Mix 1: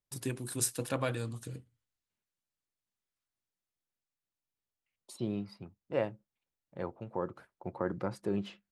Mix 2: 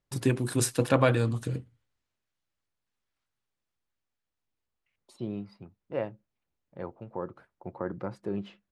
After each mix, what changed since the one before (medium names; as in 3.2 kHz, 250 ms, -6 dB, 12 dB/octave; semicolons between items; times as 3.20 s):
first voice +11.0 dB; master: add low-pass 2.7 kHz 6 dB/octave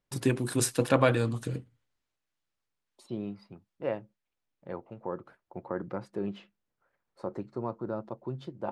second voice: entry -2.10 s; master: add peaking EQ 78 Hz -5.5 dB 1.3 oct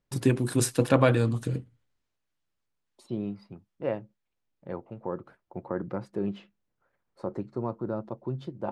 master: add bass shelf 400 Hz +5 dB